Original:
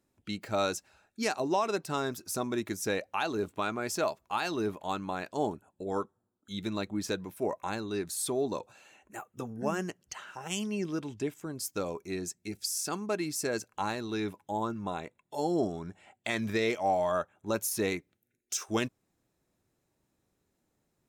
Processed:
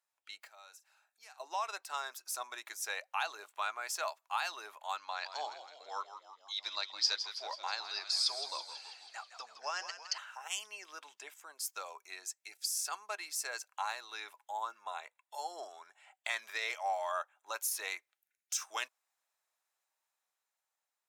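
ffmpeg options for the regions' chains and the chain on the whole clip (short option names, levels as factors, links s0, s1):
-filter_complex "[0:a]asettb=1/sr,asplit=3[s0][s1][s2];[s0]atrim=end=0.474[s3];[s1]atrim=start=0.47:end=1.4,asetpts=PTS-STARTPTS,afade=t=in:d=0.004:c=qsin,afade=t=out:st=0.926:d=0.004:c=qsin,equalizer=f=14000:t=o:w=0.72:g=6.5,acompressor=threshold=0.00141:ratio=2:attack=3.2:release=140:knee=1:detection=peak,asplit=2[s4][s5];[s5]adelay=43,volume=0.211[s6];[s4][s6]amix=inputs=2:normalize=0,atrim=end_sample=41013[s7];[s2]atrim=start=1.396[s8];[s3][s7]acrossfade=d=0.004:c1=hsin:c2=qsin[s9];[s9][s8]acrossfade=d=0.004:c1=qsin:c2=hsin,asettb=1/sr,asplit=3[s10][s11][s12];[s10]atrim=end=4.974[s13];[s11]atrim=start=4.97:end=10.18,asetpts=PTS-STARTPTS,afade=t=in:d=0.004:c=qsin,afade=t=out:st=5.206:d=0.004:c=qsin,lowpass=f=4900:t=q:w=14,bandreject=f=380:w=12,asplit=9[s14][s15][s16][s17][s18][s19][s20][s21][s22];[s15]adelay=163,afreqshift=-72,volume=0.316[s23];[s16]adelay=326,afreqshift=-144,volume=0.202[s24];[s17]adelay=489,afreqshift=-216,volume=0.129[s25];[s18]adelay=652,afreqshift=-288,volume=0.0832[s26];[s19]adelay=815,afreqshift=-360,volume=0.0531[s27];[s20]adelay=978,afreqshift=-432,volume=0.0339[s28];[s21]adelay=1141,afreqshift=-504,volume=0.0216[s29];[s22]adelay=1304,afreqshift=-576,volume=0.014[s30];[s14][s23][s24][s25][s26][s27][s28][s29][s30]amix=inputs=9:normalize=0,atrim=end_sample=229761[s31];[s12]atrim=start=10.176[s32];[s13][s31]acrossfade=d=0.004:c1=hsin:c2=qsin[s33];[s33][s32]acrossfade=d=0.004:c1=qsin:c2=hsin,highpass=f=790:w=0.5412,highpass=f=790:w=1.3066,dynaudnorm=f=490:g=7:m=1.68,volume=0.473"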